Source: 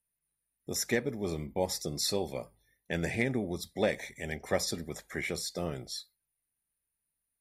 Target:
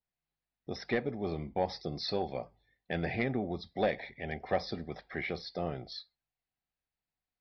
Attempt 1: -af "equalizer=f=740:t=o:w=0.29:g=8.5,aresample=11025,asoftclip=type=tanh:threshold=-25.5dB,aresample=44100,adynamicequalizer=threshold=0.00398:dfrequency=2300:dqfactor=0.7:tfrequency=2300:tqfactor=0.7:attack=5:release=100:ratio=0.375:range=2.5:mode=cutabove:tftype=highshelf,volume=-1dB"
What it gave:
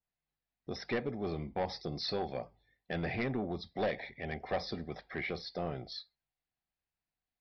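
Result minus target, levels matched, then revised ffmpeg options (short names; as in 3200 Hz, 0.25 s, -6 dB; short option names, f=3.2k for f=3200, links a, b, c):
soft clip: distortion +10 dB
-af "equalizer=f=740:t=o:w=0.29:g=8.5,aresample=11025,asoftclip=type=tanh:threshold=-17dB,aresample=44100,adynamicequalizer=threshold=0.00398:dfrequency=2300:dqfactor=0.7:tfrequency=2300:tqfactor=0.7:attack=5:release=100:ratio=0.375:range=2.5:mode=cutabove:tftype=highshelf,volume=-1dB"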